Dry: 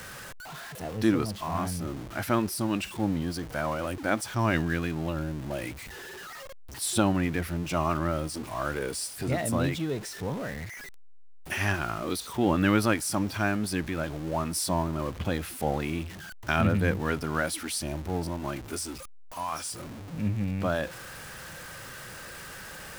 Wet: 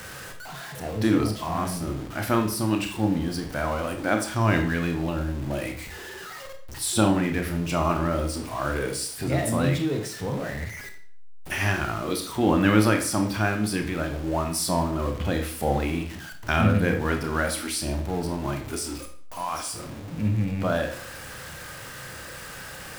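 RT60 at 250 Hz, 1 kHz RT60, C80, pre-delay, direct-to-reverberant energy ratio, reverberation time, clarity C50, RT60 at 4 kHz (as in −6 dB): 0.55 s, 0.55 s, 12.5 dB, 28 ms, 4.5 dB, 0.55 s, 9.0 dB, 0.50 s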